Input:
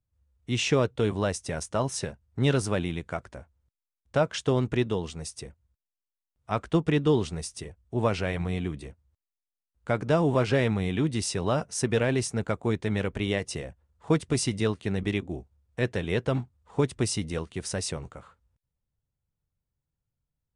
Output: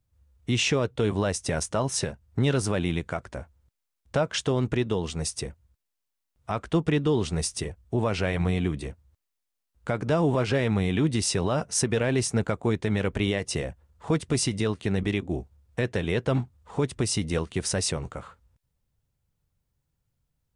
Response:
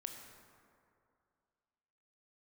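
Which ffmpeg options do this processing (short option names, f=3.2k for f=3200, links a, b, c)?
-af "alimiter=limit=-22dB:level=0:latency=1:release=269,volume=7.5dB"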